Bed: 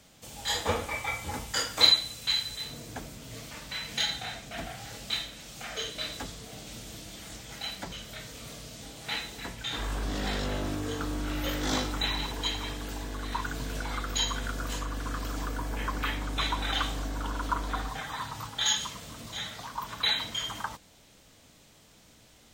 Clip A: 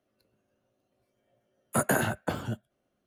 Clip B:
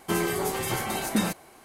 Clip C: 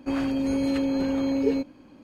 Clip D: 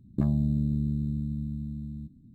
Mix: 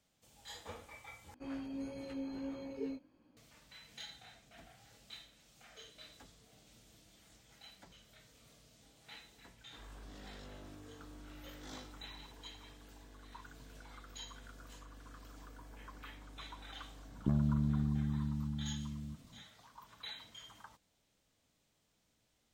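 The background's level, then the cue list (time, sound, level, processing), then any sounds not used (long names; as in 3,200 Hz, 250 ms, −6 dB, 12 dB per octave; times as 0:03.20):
bed −20 dB
0:01.34: overwrite with C −14.5 dB + chorus effect 1.5 Hz, delay 16 ms, depth 3.6 ms
0:17.08: mix in D −6 dB
not used: A, B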